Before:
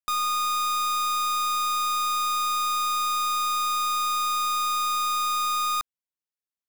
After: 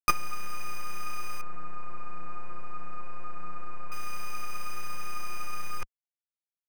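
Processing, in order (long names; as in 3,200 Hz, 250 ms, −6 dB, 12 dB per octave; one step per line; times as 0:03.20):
running median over 41 samples
multi-voice chorus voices 4, 0.54 Hz, delay 16 ms, depth 4.1 ms
0:01.41–0:03.92: low-pass filter 1,300 Hz 12 dB per octave
saturating transformer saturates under 52 Hz
level +12 dB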